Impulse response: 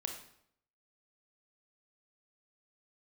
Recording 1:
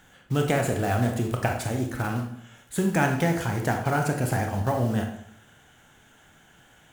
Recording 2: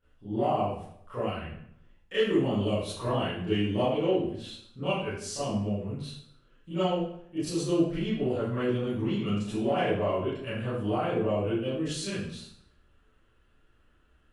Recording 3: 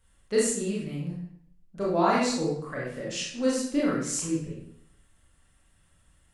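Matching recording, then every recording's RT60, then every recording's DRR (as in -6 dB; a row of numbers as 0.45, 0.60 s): 1; 0.70, 0.70, 0.70 s; 3.0, -14.5, -6.0 dB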